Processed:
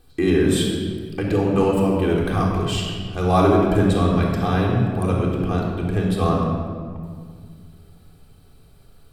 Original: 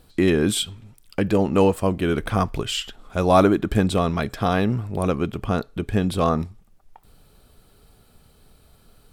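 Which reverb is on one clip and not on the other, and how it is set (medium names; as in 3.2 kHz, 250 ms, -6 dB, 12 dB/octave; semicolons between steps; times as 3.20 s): simulated room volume 3100 m³, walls mixed, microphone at 3.7 m; trim -5.5 dB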